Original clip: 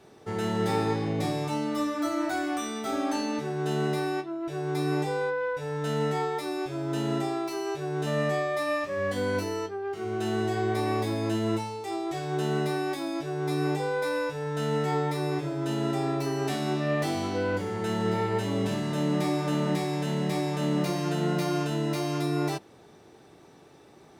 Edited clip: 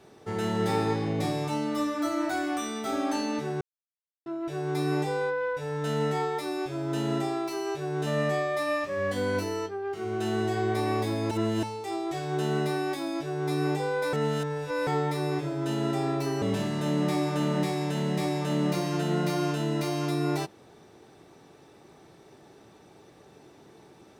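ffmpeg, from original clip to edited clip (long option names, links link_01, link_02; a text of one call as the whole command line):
ffmpeg -i in.wav -filter_complex "[0:a]asplit=8[link_01][link_02][link_03][link_04][link_05][link_06][link_07][link_08];[link_01]atrim=end=3.61,asetpts=PTS-STARTPTS,afade=type=out:start_time=3.606:duration=0.004:curve=hsin[link_09];[link_02]atrim=start=3.61:end=4.26,asetpts=PTS-STARTPTS,volume=0[link_10];[link_03]atrim=start=4.26:end=11.312,asetpts=PTS-STARTPTS,afade=type=in:duration=0.004:curve=hsin[link_11];[link_04]atrim=start=11.308:end=11.632,asetpts=PTS-STARTPTS,areverse[link_12];[link_05]atrim=start=11.628:end=14.132[link_13];[link_06]atrim=start=14.128:end=14.872,asetpts=PTS-STARTPTS,areverse[link_14];[link_07]atrim=start=14.868:end=16.422[link_15];[link_08]atrim=start=18.538[link_16];[link_09][link_10][link_11]concat=n=3:v=0:a=1[link_17];[link_17][link_12]acrossfade=duration=0.004:curve1=hsin:curve2=hsin[link_18];[link_18][link_13]acrossfade=duration=0.004:curve1=hsin:curve2=hsin[link_19];[link_19][link_14]acrossfade=duration=0.004:curve1=hsin:curve2=hsin[link_20];[link_20][link_15]acrossfade=duration=0.004:curve1=hsin:curve2=hsin[link_21];[link_21][link_16]acrossfade=duration=0.004:curve1=hsin:curve2=hsin" out.wav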